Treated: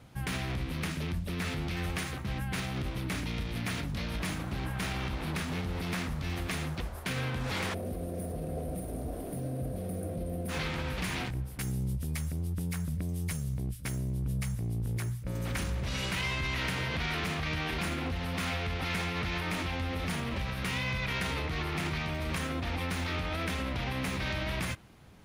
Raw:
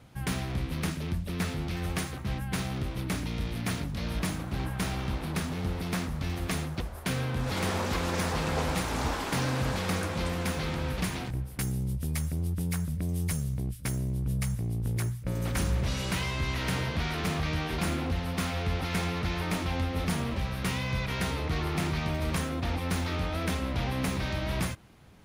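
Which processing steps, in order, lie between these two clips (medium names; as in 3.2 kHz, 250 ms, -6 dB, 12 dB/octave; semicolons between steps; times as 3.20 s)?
peak limiter -26 dBFS, peak gain reduction 7.5 dB; time-frequency box 7.74–10.49 s, 770–8500 Hz -20 dB; dynamic bell 2.3 kHz, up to +6 dB, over -48 dBFS, Q 0.84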